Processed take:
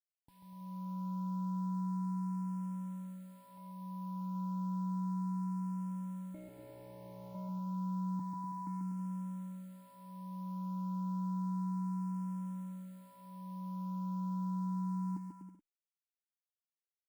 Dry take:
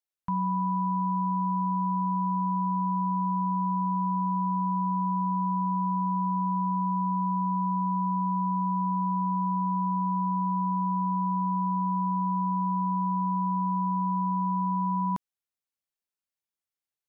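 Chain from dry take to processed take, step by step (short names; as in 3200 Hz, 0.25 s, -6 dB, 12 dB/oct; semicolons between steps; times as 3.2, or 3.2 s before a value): 3.57–4.21 bell 680 Hz +14.5 dB 0.37 oct; 8.19–8.67 Chebyshev band-stop 170–460 Hz, order 5; limiter -31.5 dBFS, peak gain reduction 11.5 dB; AGC gain up to 10.5 dB; 6.34–7.35 wrapped overs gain 22.5 dB; vocal tract filter u; soft clip -34.5 dBFS, distortion -25 dB; bit-crush 11-bit; bouncing-ball echo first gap 0.14 s, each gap 0.75×, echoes 5; endless phaser +0.31 Hz; gain +1 dB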